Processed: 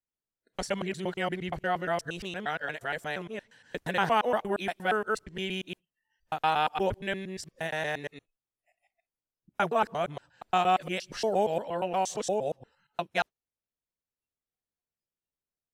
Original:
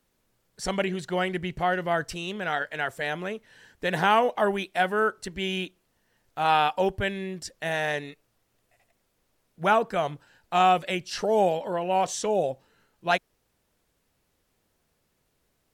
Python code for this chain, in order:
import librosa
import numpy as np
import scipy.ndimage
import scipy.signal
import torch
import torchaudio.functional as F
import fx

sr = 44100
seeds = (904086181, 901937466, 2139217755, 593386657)

y = fx.local_reverse(x, sr, ms=117.0)
y = fx.noise_reduce_blind(y, sr, reduce_db=23)
y = y * 10.0 ** (-4.0 / 20.0)